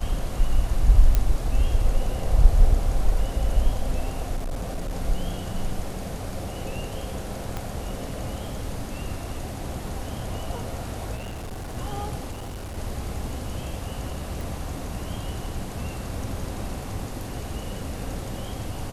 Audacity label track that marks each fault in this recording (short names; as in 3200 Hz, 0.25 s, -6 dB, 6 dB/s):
1.150000	1.150000	pop -8 dBFS
4.360000	4.950000	clipped -25 dBFS
7.570000	7.570000	pop -16 dBFS
11.150000	11.770000	clipped -31 dBFS
12.310000	12.780000	clipped -31.5 dBFS
14.410000	14.410000	pop